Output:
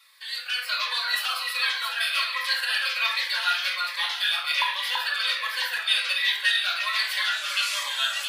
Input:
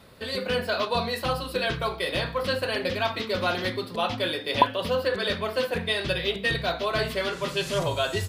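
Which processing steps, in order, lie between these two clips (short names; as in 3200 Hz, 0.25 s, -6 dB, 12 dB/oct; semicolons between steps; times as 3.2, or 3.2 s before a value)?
HPF 1300 Hz 24 dB/oct; AGC gain up to 5 dB; echo with dull and thin repeats by turns 0.334 s, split 2300 Hz, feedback 58%, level -3 dB; reverb RT60 0.60 s, pre-delay 4 ms, DRR 0.5 dB; cascading phaser falling 1.3 Hz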